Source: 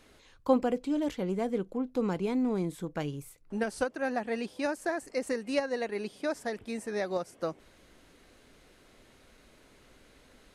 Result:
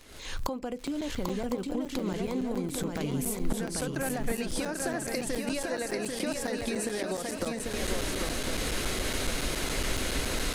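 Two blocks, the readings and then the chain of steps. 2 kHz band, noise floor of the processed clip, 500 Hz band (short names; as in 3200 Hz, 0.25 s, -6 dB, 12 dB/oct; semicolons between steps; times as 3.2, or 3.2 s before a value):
+4.0 dB, -39 dBFS, -1.0 dB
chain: recorder AGC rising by 57 dB/s; high shelf 3200 Hz +7.5 dB; crackle 34/s -35 dBFS; compressor, threshold -31 dBFS, peak gain reduction 15 dB; low shelf 70 Hz +8.5 dB; swung echo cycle 1.056 s, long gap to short 3:1, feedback 42%, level -4 dB; crackling interface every 0.14 s, samples 256, zero, from 0.87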